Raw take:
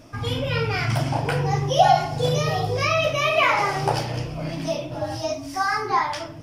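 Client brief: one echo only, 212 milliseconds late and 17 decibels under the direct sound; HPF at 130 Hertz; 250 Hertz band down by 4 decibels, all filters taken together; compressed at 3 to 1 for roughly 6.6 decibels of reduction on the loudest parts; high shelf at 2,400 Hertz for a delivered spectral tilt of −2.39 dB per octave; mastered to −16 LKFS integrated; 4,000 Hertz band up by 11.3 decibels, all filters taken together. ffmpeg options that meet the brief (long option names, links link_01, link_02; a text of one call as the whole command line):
ffmpeg -i in.wav -af "highpass=130,equalizer=frequency=250:width_type=o:gain=-5.5,highshelf=frequency=2400:gain=7,equalizer=frequency=4000:width_type=o:gain=9,acompressor=threshold=-19dB:ratio=3,aecho=1:1:212:0.141,volume=6dB" out.wav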